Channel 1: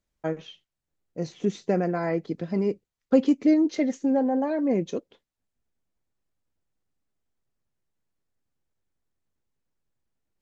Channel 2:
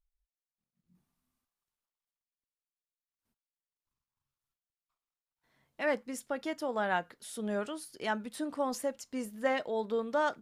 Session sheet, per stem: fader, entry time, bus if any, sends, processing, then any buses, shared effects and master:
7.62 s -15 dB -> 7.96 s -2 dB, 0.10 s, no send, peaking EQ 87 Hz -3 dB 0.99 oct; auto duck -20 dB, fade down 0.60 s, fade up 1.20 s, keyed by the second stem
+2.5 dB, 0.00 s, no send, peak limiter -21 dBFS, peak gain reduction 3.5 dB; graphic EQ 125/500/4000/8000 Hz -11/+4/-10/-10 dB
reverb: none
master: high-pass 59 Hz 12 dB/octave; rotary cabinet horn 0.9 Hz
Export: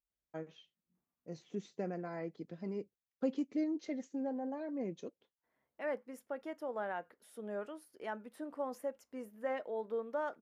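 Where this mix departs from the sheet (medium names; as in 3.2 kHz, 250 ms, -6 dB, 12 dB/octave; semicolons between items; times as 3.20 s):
stem 2 +2.5 dB -> -8.0 dB; master: missing rotary cabinet horn 0.9 Hz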